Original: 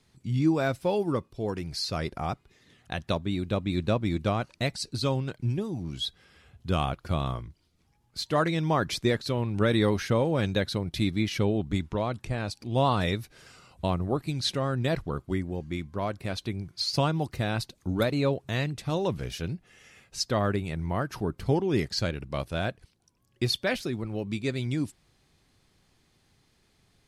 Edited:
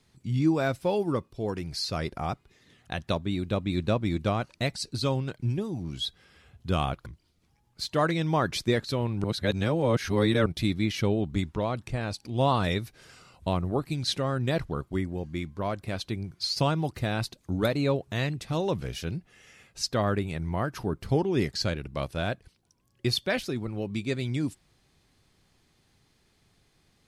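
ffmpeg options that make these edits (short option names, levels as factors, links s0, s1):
-filter_complex "[0:a]asplit=4[s0][s1][s2][s3];[s0]atrim=end=7.062[s4];[s1]atrim=start=7.428:end=9.612[s5];[s2]atrim=start=9.608:end=10.832,asetpts=PTS-STARTPTS,areverse[s6];[s3]atrim=start=10.828[s7];[s4][s5]acrossfade=d=0.004:c1=hsin:c2=hsin[s8];[s8][s6]acrossfade=d=0.004:c1=hsin:c2=hsin[s9];[s9][s7]acrossfade=d=0.004:c1=hsin:c2=hsin"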